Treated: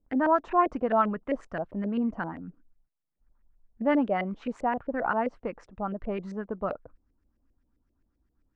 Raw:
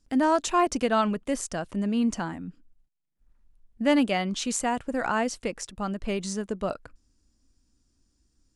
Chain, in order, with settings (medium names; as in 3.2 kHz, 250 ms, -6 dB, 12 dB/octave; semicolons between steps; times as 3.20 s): LFO low-pass saw up 7.6 Hz 480–2200 Hz; trim -4 dB